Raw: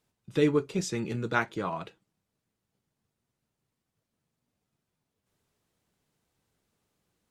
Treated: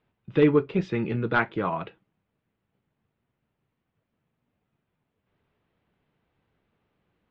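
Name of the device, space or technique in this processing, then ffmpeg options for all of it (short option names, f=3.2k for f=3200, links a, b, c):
synthesiser wavefolder: -af "aeval=exprs='0.188*(abs(mod(val(0)/0.188+3,4)-2)-1)':c=same,lowpass=f=3k:w=0.5412,lowpass=f=3k:w=1.3066,volume=5dB"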